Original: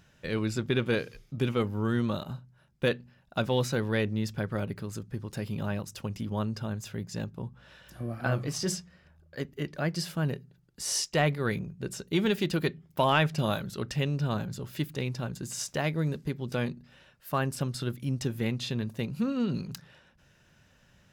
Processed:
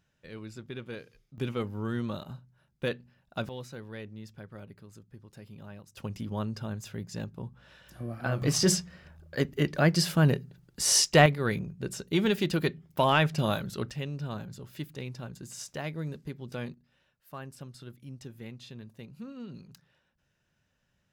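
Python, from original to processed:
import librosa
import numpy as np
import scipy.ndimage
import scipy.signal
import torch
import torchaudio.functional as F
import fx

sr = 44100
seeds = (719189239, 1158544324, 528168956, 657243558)

y = fx.gain(x, sr, db=fx.steps((0.0, -13.0), (1.38, -4.5), (3.49, -14.0), (5.97, -2.0), (8.42, 7.0), (11.26, 0.5), (13.9, -6.5), (16.74, -13.5)))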